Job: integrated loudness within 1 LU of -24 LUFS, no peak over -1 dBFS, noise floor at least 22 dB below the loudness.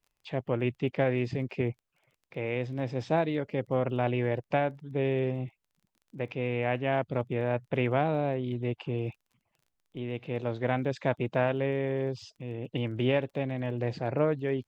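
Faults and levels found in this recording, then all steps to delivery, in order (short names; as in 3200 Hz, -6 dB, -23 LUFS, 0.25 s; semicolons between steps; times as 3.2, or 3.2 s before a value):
ticks 22/s; loudness -31.0 LUFS; peak -12.0 dBFS; loudness target -24.0 LUFS
-> de-click; gain +7 dB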